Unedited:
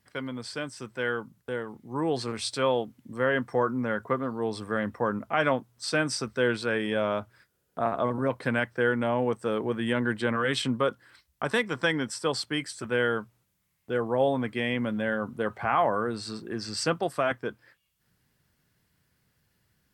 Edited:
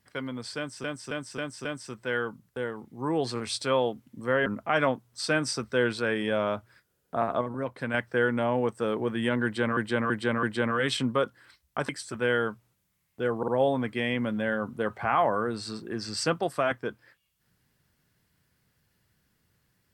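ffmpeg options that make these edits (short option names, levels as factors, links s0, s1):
-filter_complex "[0:a]asplit=14[s0][s1][s2][s3][s4][s5][s6][s7][s8][s9][s10][s11][s12][s13];[s0]atrim=end=0.842[s14];[s1]atrim=start=0.568:end=0.842[s15];[s2]atrim=start=0.568:end=0.842[s16];[s3]atrim=start=0.568:end=0.842[s17];[s4]atrim=start=0.568:end=3.382[s18];[s5]atrim=start=5.098:end=8.052[s19];[s6]atrim=start=8.048:end=8.582,asetpts=PTS-STARTPTS,volume=0.562[s20];[s7]atrim=start=8.578:end=10.412[s21];[s8]atrim=start=10.078:end=10.412[s22];[s9]atrim=start=10.078:end=10.412[s23];[s10]atrim=start=10.078:end=11.542[s24];[s11]atrim=start=12.588:end=14.132[s25];[s12]atrim=start=14.078:end=14.132[s26];[s13]atrim=start=14.078[s27];[s14][s15]acrossfade=d=0.004:c1=hsin:c2=hsin[s28];[s28][s16]acrossfade=d=0.004:c1=hsin:c2=hsin[s29];[s29][s17]acrossfade=d=0.004:c1=hsin:c2=hsin[s30];[s30][s18]acrossfade=d=0.004:c1=hsin:c2=hsin[s31];[s31][s19]acrossfade=d=0.004:c1=hsin:c2=hsin[s32];[s32][s20]acrossfade=d=0.004:c1=hsin:c2=hsin[s33];[s33][s21]acrossfade=d=0.004:c1=hsin:c2=hsin[s34];[s34][s22]acrossfade=d=0.004:c1=hsin:c2=hsin[s35];[s35][s23]acrossfade=d=0.004:c1=hsin:c2=hsin[s36];[s36][s24]acrossfade=d=0.004:c1=hsin:c2=hsin[s37];[s37][s25]acrossfade=d=0.004:c1=hsin:c2=hsin[s38];[s38][s26]acrossfade=d=0.004:c1=hsin:c2=hsin[s39];[s39][s27]acrossfade=d=0.004:c1=hsin:c2=hsin"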